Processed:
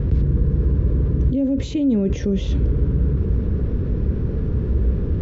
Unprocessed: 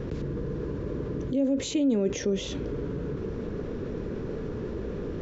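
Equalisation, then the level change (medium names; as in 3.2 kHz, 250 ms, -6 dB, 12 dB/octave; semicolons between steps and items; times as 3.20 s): low-pass 6.5 kHz 24 dB/octave; tone controls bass +12 dB, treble -4 dB; peaking EQ 64 Hz +10.5 dB 1.2 oct; 0.0 dB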